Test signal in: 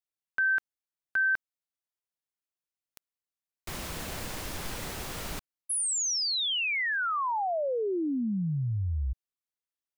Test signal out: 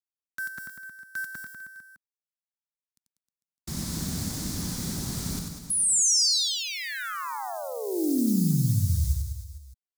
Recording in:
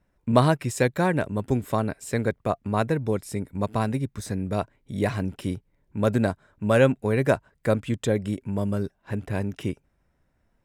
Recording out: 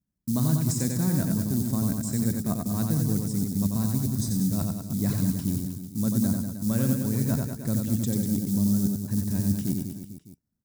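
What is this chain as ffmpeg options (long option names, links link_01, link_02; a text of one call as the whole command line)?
ffmpeg -i in.wav -filter_complex "[0:a]aemphasis=mode=reproduction:type=75fm,agate=range=-19dB:threshold=-53dB:ratio=16:release=58:detection=peak,highpass=frequency=130:poles=1,lowshelf=frequency=330:width_type=q:width=1.5:gain=14,areverse,acompressor=threshold=-19dB:ratio=5:attack=7.3:release=123:knee=1:detection=rms,areverse,acrusher=bits=9:mode=log:mix=0:aa=0.000001,aexciter=amount=11.4:drive=3.5:freq=4100,asplit=2[link_01][link_02];[link_02]aecho=0:1:90|193.5|312.5|449.4|606.8:0.631|0.398|0.251|0.158|0.1[link_03];[link_01][link_03]amix=inputs=2:normalize=0,volume=-5dB" out.wav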